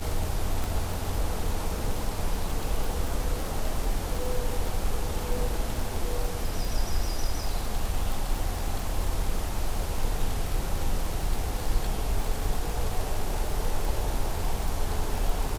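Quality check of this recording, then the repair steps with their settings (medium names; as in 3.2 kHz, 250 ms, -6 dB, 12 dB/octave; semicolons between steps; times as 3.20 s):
crackle 59 per s -29 dBFS
0.64 s: pop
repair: de-click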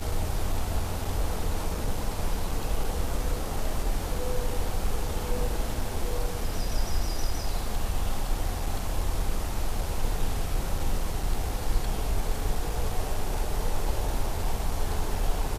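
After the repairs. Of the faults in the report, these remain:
0.64 s: pop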